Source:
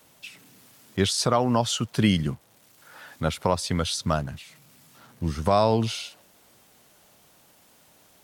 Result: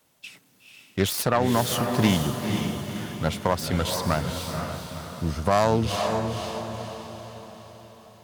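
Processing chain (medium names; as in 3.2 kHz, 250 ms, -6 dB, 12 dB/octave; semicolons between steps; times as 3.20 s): self-modulated delay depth 0.16 ms; gate -48 dBFS, range -8 dB; on a send: echo that smears into a reverb 491 ms, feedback 50%, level -5 dB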